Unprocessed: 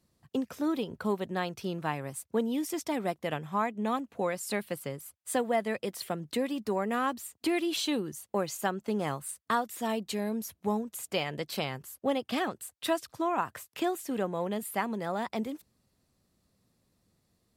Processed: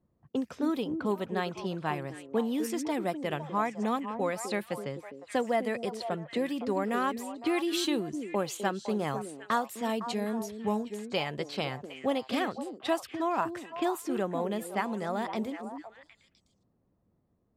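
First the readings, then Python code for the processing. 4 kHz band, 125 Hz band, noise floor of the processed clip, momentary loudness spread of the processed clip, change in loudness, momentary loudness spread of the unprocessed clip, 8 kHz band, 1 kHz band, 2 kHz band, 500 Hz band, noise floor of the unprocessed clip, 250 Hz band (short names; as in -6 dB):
-0.5 dB, 0.0 dB, -73 dBFS, 6 LU, +0.5 dB, 5 LU, -3.5 dB, +0.5 dB, +0.5 dB, +0.5 dB, -77 dBFS, +1.0 dB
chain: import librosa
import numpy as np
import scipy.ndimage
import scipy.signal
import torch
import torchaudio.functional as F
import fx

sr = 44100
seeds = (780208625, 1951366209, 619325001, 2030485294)

y = fx.env_lowpass(x, sr, base_hz=1000.0, full_db=-28.5)
y = fx.echo_stepped(y, sr, ms=254, hz=320.0, octaves=1.4, feedback_pct=70, wet_db=-5.0)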